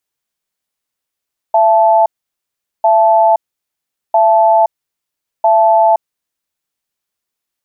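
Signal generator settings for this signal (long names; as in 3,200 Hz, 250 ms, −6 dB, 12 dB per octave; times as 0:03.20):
tone pair in a cadence 671 Hz, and 873 Hz, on 0.52 s, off 0.78 s, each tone −9 dBFS 4.87 s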